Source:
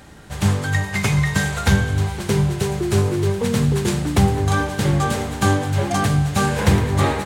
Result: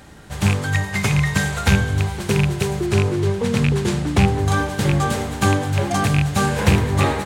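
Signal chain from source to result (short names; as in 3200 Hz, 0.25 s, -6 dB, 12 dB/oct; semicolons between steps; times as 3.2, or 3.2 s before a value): rattling part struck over -13 dBFS, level -10 dBFS; 2.86–4.39 high shelf 11000 Hz -12 dB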